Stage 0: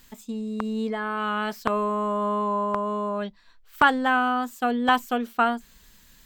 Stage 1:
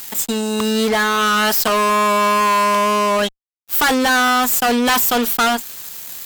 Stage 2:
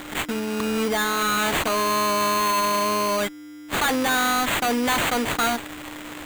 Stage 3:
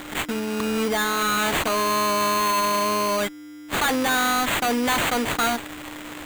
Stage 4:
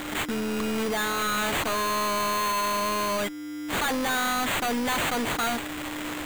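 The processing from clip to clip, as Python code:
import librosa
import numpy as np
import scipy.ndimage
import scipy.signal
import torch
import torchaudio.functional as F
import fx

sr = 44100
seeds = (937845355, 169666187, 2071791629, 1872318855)

y1 = fx.riaa(x, sr, side='recording')
y1 = fx.fuzz(y1, sr, gain_db=34.0, gate_db=-42.0)
y2 = y1 + 10.0 ** (-31.0 / 20.0) * np.sin(2.0 * np.pi * 5000.0 * np.arange(len(y1)) / sr)
y2 = fx.sample_hold(y2, sr, seeds[0], rate_hz=5300.0, jitter_pct=0)
y2 = y2 * librosa.db_to_amplitude(-6.5)
y3 = y2
y4 = fx.recorder_agc(y3, sr, target_db=-22.0, rise_db_per_s=11.0, max_gain_db=30)
y4 = np.clip(10.0 ** (27.5 / 20.0) * y4, -1.0, 1.0) / 10.0 ** (27.5 / 20.0)
y4 = y4 * librosa.db_to_amplitude(2.5)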